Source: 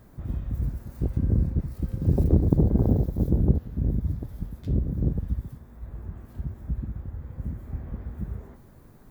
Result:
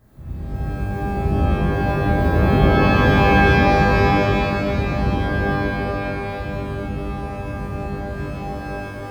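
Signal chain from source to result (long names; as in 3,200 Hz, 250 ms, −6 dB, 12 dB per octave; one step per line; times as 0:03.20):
reverb with rising layers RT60 3.1 s, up +12 semitones, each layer −2 dB, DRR −9 dB
level −5.5 dB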